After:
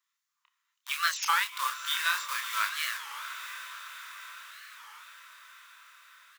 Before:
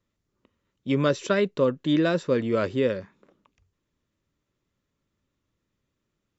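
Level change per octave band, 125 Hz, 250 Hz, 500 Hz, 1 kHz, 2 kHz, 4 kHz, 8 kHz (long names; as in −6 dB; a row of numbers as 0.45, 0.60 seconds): below −40 dB, below −40 dB, −36.0 dB, +4.0 dB, +4.5 dB, +6.0 dB, can't be measured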